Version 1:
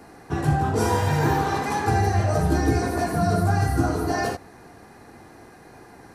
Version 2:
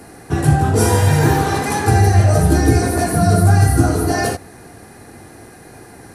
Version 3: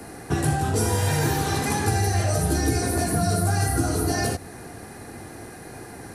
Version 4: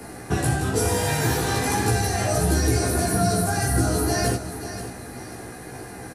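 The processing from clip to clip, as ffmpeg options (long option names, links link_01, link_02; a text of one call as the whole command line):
ffmpeg -i in.wav -af "equalizer=frequency=100:width_type=o:width=0.67:gain=4,equalizer=frequency=1000:width_type=o:width=0.67:gain=-5,equalizer=frequency=10000:width_type=o:width=0.67:gain=10,volume=7dB" out.wav
ffmpeg -i in.wav -filter_complex "[0:a]acrossover=split=270|2600[link_01][link_02][link_03];[link_01]acompressor=threshold=-24dB:ratio=4[link_04];[link_02]acompressor=threshold=-27dB:ratio=4[link_05];[link_03]acompressor=threshold=-29dB:ratio=4[link_06];[link_04][link_05][link_06]amix=inputs=3:normalize=0" out.wav
ffmpeg -i in.wav -filter_complex "[0:a]asplit=2[link_01][link_02];[link_02]adelay=16,volume=-3dB[link_03];[link_01][link_03]amix=inputs=2:normalize=0,aecho=1:1:534|1068|1602|2136:0.266|0.0958|0.0345|0.0124" out.wav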